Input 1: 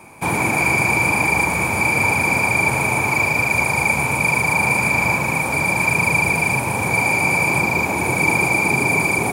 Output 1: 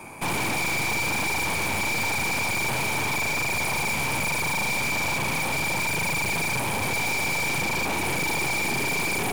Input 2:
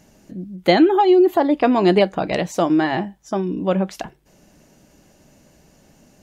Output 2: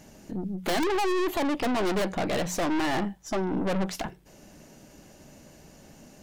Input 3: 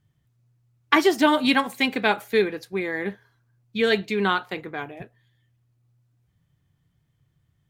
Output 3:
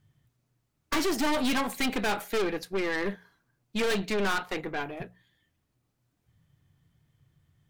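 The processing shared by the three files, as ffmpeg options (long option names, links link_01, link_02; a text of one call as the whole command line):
ffmpeg -i in.wav -af "aeval=exprs='(mod(1.78*val(0)+1,2)-1)/1.78':channel_layout=same,aeval=exprs='(tanh(28.2*val(0)+0.5)-tanh(0.5))/28.2':channel_layout=same,bandreject=frequency=60:width_type=h:width=6,bandreject=frequency=120:width_type=h:width=6,bandreject=frequency=180:width_type=h:width=6,volume=4dB" out.wav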